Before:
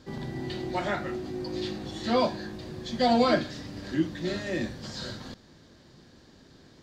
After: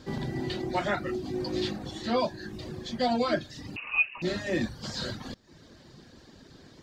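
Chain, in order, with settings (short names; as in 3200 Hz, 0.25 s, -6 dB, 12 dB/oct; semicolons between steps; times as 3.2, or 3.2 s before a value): reverb removal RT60 0.64 s; vocal rider within 4 dB 0.5 s; 3.76–4.22 inverted band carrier 2800 Hz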